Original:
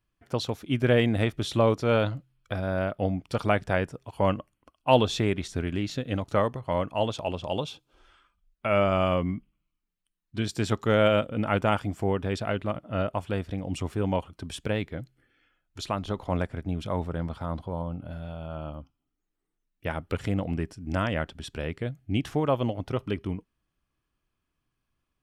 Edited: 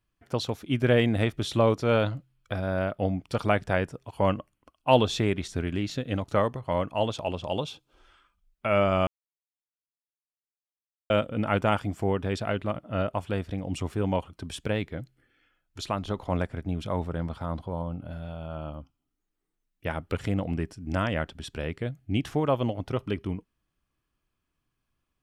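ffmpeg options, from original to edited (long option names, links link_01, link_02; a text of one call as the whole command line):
ffmpeg -i in.wav -filter_complex "[0:a]asplit=3[link_01][link_02][link_03];[link_01]atrim=end=9.07,asetpts=PTS-STARTPTS,afade=type=out:start_time=9.066:duration=0.004:curve=hsin[link_04];[link_02]atrim=start=9.07:end=11.1,asetpts=PTS-STARTPTS,volume=0[link_05];[link_03]atrim=start=11.1,asetpts=PTS-STARTPTS,afade=type=in:duration=0.004:curve=hsin[link_06];[link_04][link_05][link_06]concat=n=3:v=0:a=1" out.wav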